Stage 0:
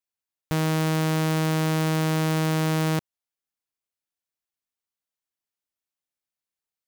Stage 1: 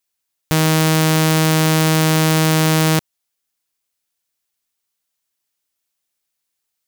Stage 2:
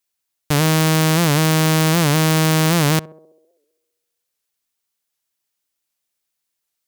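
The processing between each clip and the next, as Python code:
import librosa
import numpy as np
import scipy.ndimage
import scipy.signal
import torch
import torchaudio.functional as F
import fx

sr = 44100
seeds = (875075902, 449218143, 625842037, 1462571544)

y1 = fx.high_shelf(x, sr, hz=2500.0, db=7.0)
y1 = y1 * librosa.db_to_amplitude(8.0)
y2 = fx.echo_banded(y1, sr, ms=65, feedback_pct=72, hz=440.0, wet_db=-16.0)
y2 = fx.record_warp(y2, sr, rpm=78.0, depth_cents=160.0)
y2 = y2 * librosa.db_to_amplitude(-1.0)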